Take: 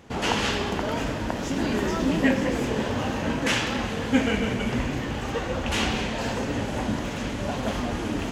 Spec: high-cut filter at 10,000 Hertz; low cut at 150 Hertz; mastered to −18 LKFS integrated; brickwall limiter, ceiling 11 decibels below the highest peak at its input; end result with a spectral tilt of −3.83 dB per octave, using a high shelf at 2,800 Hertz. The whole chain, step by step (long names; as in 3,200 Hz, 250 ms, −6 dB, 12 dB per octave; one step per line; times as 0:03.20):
high-pass filter 150 Hz
low-pass filter 10,000 Hz
high-shelf EQ 2,800 Hz +5 dB
level +10 dB
brickwall limiter −8.5 dBFS